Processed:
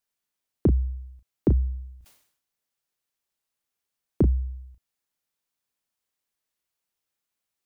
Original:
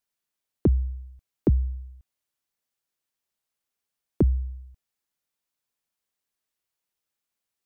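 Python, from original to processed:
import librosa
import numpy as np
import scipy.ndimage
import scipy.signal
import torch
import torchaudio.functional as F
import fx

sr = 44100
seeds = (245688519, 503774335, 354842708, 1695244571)

y = fx.doubler(x, sr, ms=35.0, db=-9.5)
y = fx.sustainer(y, sr, db_per_s=88.0, at=(1.54, 4.3), fade=0.02)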